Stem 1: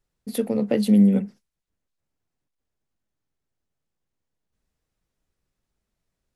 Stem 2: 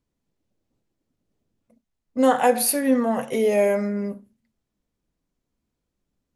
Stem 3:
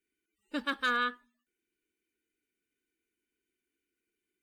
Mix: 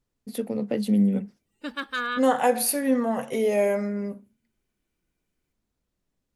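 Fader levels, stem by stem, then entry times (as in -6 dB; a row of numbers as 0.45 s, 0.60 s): -5.0 dB, -3.0 dB, +0.5 dB; 0.00 s, 0.00 s, 1.10 s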